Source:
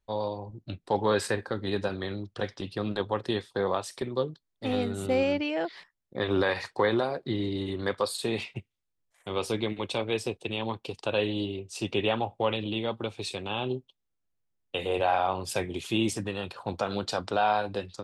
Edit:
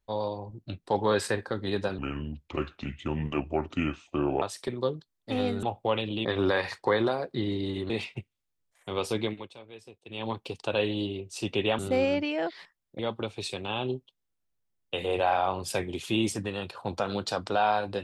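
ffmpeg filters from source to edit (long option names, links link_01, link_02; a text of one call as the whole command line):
ffmpeg -i in.wav -filter_complex "[0:a]asplit=10[link_01][link_02][link_03][link_04][link_05][link_06][link_07][link_08][link_09][link_10];[link_01]atrim=end=1.984[link_11];[link_02]atrim=start=1.98:end=3.76,asetpts=PTS-STARTPTS,asetrate=32193,aresample=44100[link_12];[link_03]atrim=start=3.756:end=4.972[link_13];[link_04]atrim=start=12.178:end=12.802[link_14];[link_05]atrim=start=6.168:end=7.822[link_15];[link_06]atrim=start=8.288:end=9.89,asetpts=PTS-STARTPTS,afade=type=out:start_time=1.362:duration=0.24:silence=0.125893[link_16];[link_07]atrim=start=9.89:end=10.44,asetpts=PTS-STARTPTS,volume=-18dB[link_17];[link_08]atrim=start=10.44:end=12.182,asetpts=PTS-STARTPTS,afade=type=in:duration=0.24:silence=0.125893[link_18];[link_09]atrim=start=4.968:end=6.172[link_19];[link_10]atrim=start=12.798[link_20];[link_11][link_12]acrossfade=duration=0.004:curve1=hsin:curve2=hsin[link_21];[link_21][link_13]acrossfade=duration=0.004:curve1=hsin:curve2=hsin[link_22];[link_22][link_14]acrossfade=duration=0.004:curve1=hsin:curve2=hsin[link_23];[link_23][link_15]acrossfade=duration=0.004:curve1=hsin:curve2=hsin[link_24];[link_16][link_17][link_18]concat=n=3:v=0:a=1[link_25];[link_24][link_25]acrossfade=duration=0.004:curve1=hsin:curve2=hsin[link_26];[link_26][link_19]acrossfade=duration=0.004:curve1=hsin:curve2=hsin[link_27];[link_27][link_20]acrossfade=duration=0.004:curve1=hsin:curve2=hsin" out.wav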